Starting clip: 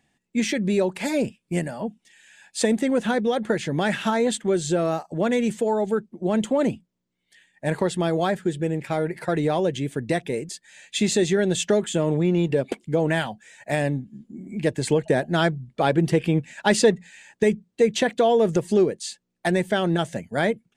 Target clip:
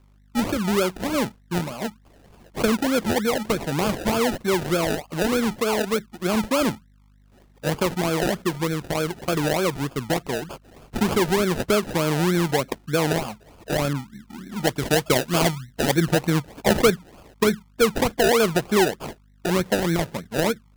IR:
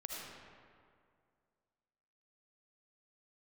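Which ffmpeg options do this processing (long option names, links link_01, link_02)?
-filter_complex "[0:a]aeval=exprs='val(0)+0.002*(sin(2*PI*50*n/s)+sin(2*PI*2*50*n/s)/2+sin(2*PI*3*50*n/s)/3+sin(2*PI*4*50*n/s)/4+sin(2*PI*5*50*n/s)/5)':channel_layout=same,acrusher=samples=32:mix=1:aa=0.000001:lfo=1:lforange=19.2:lforate=3.3,asettb=1/sr,asplit=3[link_01][link_02][link_03];[link_01]atrim=end=13.934[link_04];[link_02]atrim=start=13.93:end=15.96,asetpts=PTS-STARTPTS,afade=type=in:duration=0.004:curve=qsin,afade=type=out:start_time=2.026:duration=0.004:curve=qsin,adynamicequalizer=threshold=0.0224:dfrequency=2200:dqfactor=0.7:tfrequency=2200:tqfactor=0.7:attack=5:release=100:ratio=0.375:range=2:mode=boostabove:tftype=highshelf[link_05];[link_03]atrim=start=15.956[link_06];[link_04][link_05]acrossfade=duration=0.004:curve1=hsin:curve2=qsin[link_07];[link_07][link_06]acrossfade=duration=0.004:curve1=qsin:curve2=hsin"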